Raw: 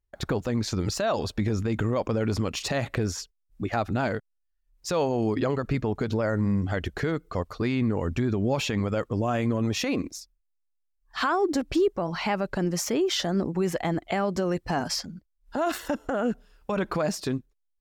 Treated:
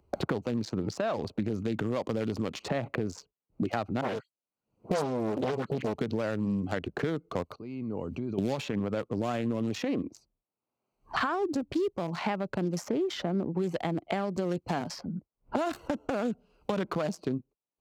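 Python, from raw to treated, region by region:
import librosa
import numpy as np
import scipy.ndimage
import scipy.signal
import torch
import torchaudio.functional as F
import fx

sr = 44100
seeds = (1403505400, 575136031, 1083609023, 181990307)

y = fx.chain(x, sr, fx.highpass(hz=120.0, slope=12),
    fx.dispersion(late='highs', ms=129.0, hz=2300.0),
    fx.doppler_dist(depth_ms=0.99), at=(4.01, 5.94))
y = fx.chain(y, sr, fx.dynamic_eq(hz=4900.0, q=1.2, threshold_db=-51.0, ratio=4.0, max_db=4),
    fx.level_steps(step_db=22), at=(7.53, 8.38))
y = fx.wiener(y, sr, points=25)
y = scipy.signal.sosfilt(scipy.signal.butter(2, 130.0, 'highpass', fs=sr, output='sos'), y)
y = fx.band_squash(y, sr, depth_pct=100)
y = F.gain(torch.from_numpy(y), -3.5).numpy()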